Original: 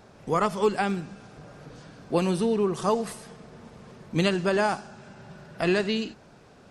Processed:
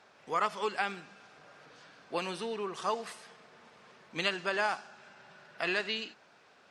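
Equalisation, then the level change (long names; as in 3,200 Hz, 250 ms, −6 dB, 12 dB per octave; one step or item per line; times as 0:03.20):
resonant band-pass 2,300 Hz, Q 0.63
−1.0 dB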